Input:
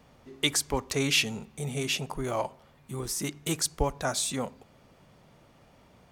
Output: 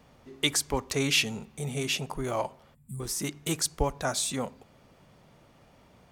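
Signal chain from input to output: time-frequency box 2.74–3.00 s, 240–7100 Hz -23 dB

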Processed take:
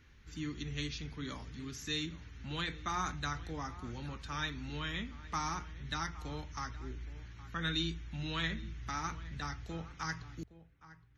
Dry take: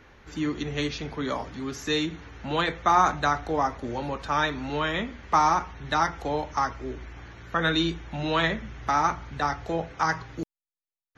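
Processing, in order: amplifier tone stack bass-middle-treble 6-0-2; echo from a far wall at 140 m, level -16 dB; trim +8.5 dB

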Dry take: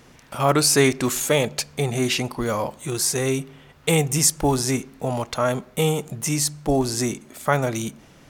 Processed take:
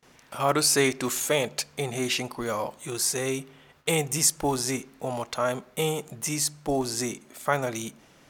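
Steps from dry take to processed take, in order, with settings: gate with hold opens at -42 dBFS; bass shelf 210 Hz -9 dB; trim -3.5 dB

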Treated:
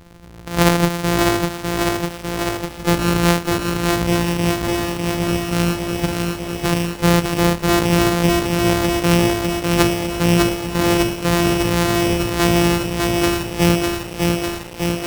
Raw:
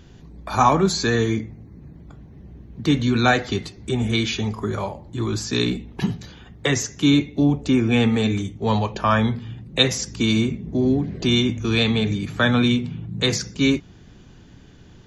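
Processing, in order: sorted samples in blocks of 256 samples; bit-crushed delay 601 ms, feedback 80%, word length 6-bit, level -3 dB; trim +1.5 dB

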